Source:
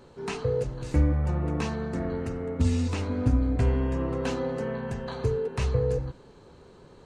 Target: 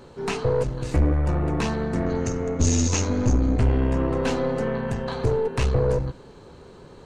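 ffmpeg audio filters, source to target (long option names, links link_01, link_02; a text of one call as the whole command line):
ffmpeg -i in.wav -filter_complex "[0:a]aeval=exprs='(tanh(14.1*val(0)+0.5)-tanh(0.5))/14.1':channel_layout=same,asettb=1/sr,asplit=3[link_01][link_02][link_03];[link_01]atrim=end=2.064[link_04];[link_02]atrim=start=2.06:end=3.59,asetpts=PTS-STARTPTS,afade=type=in:duration=0.004:curve=qsin,afade=type=out:start_time=1.526:duration=0.004:curve=qsin,lowpass=frequency=6500:width_type=q:width=10[link_05];[link_03]atrim=start=3.586[link_06];[link_04][link_05]acrossfade=duration=0.004:curve1=hsin:curve2=qsin[link_07];[link_07][link_06]acrossfade=duration=0.004:curve1=qsin:curve2=hsin,volume=8dB" out.wav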